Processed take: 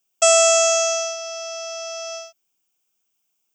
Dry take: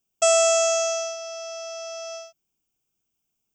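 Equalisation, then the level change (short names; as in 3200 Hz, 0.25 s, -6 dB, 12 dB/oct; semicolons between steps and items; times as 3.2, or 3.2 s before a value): HPF 730 Hz 6 dB/oct; +6.0 dB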